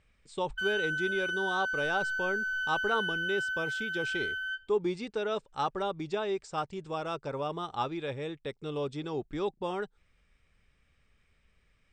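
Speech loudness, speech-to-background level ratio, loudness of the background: -34.5 LUFS, -2.5 dB, -32.0 LUFS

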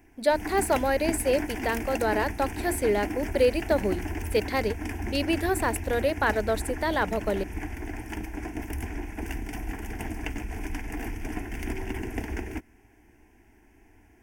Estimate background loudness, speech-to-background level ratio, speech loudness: -35.0 LUFS, 7.5 dB, -27.5 LUFS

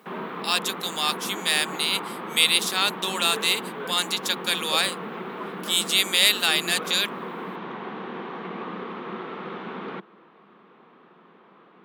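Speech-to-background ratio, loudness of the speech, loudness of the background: 12.0 dB, -22.5 LUFS, -34.5 LUFS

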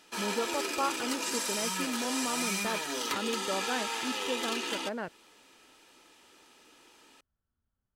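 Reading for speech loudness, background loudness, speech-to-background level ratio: -37.0 LUFS, -32.5 LUFS, -4.5 dB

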